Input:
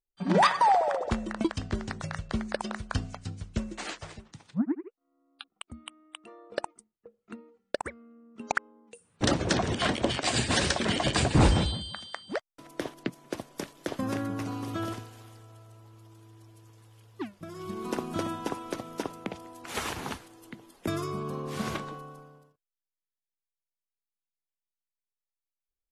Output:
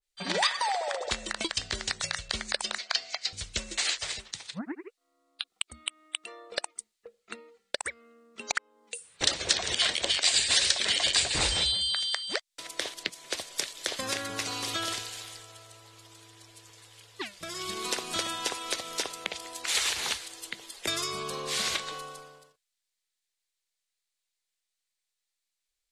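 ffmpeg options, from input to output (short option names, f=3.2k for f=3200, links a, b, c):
-filter_complex "[0:a]asettb=1/sr,asplit=3[a][b][c];[a]atrim=end=2.784[d];[b]atrim=start=2.78:end=3.33,asetpts=PTS-STARTPTS,afade=t=in:d=0.004:c=qsin,afade=t=out:st=0.546:d=0.004:c=qsin,highpass=480,equalizer=f=680:t=q:w=4:g=8,equalizer=f=2.1k:t=q:w=4:g=9,equalizer=f=4.5k:t=q:w=4:g=7,lowpass=f=6.4k:w=0.5412,lowpass=f=6.4k:w=1.3066[e];[c]atrim=start=3.326[f];[d][e]acrossfade=d=0.004:c1=hsin:c2=qsin[g];[g][f]acrossfade=d=0.004:c1=qsin:c2=hsin,equalizer=f=125:t=o:w=1:g=-8,equalizer=f=250:t=o:w=1:g=-9,equalizer=f=500:t=o:w=1:g=4,equalizer=f=2k:t=o:w=1:g=8,equalizer=f=4k:t=o:w=1:g=11,equalizer=f=8k:t=o:w=1:g=11,acompressor=threshold=-34dB:ratio=2.5,adynamicequalizer=threshold=0.00501:dfrequency=2300:dqfactor=0.7:tfrequency=2300:tqfactor=0.7:attack=5:release=100:ratio=0.375:range=3:mode=boostabove:tftype=highshelf,volume=1dB"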